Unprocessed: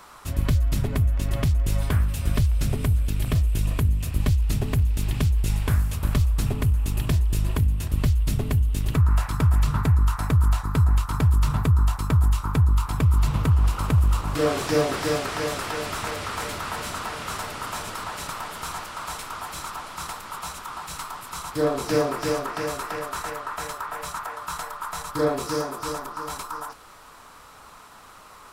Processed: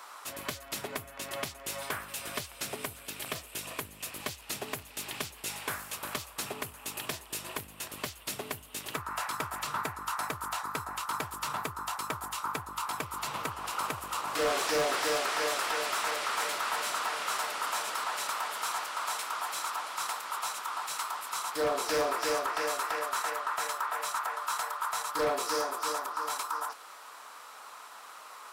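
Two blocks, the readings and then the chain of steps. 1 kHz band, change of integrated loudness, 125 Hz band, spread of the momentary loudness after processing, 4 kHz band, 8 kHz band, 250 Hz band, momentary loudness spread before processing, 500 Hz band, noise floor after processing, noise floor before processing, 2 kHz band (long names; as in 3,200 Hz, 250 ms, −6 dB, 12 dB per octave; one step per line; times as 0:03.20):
−1.0 dB, −8.5 dB, −29.0 dB, 10 LU, −0.5 dB, 0.0 dB, −15.0 dB, 12 LU, −6.0 dB, −50 dBFS, −47 dBFS, −0.5 dB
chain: high-pass filter 580 Hz 12 dB per octave
hard clipping −24 dBFS, distortion −16 dB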